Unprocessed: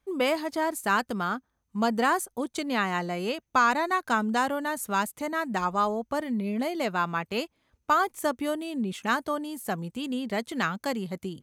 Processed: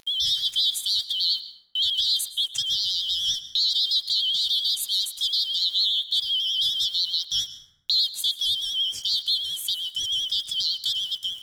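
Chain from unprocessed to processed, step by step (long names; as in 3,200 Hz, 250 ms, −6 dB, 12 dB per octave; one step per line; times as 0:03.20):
band-splitting scrambler in four parts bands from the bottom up 3412
noise gate −44 dBFS, range −36 dB
drawn EQ curve 130 Hz 0 dB, 190 Hz −9 dB, 1,100 Hz −20 dB, 3,900 Hz +11 dB, 12,000 Hz +8 dB
brickwall limiter −11.5 dBFS, peak gain reduction 11 dB
upward compression, threshold −23 dBFS
bit reduction 8 bits
pitch vibrato 10 Hz 73 cents
dense smooth reverb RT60 1.2 s, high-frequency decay 0.4×, pre-delay 100 ms, DRR 12 dB
level −2.5 dB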